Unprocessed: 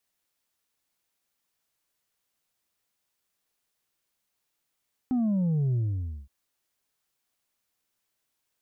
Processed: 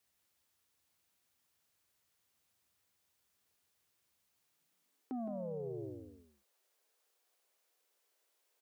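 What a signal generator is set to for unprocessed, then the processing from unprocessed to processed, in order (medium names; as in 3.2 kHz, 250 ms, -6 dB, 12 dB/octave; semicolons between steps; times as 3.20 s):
sub drop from 260 Hz, over 1.17 s, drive 3 dB, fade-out 0.54 s, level -23 dB
on a send: delay 165 ms -7.5 dB; on the sum: high-pass sweep 75 Hz -> 460 Hz, 4.36–5.19 s; peak limiter -34.5 dBFS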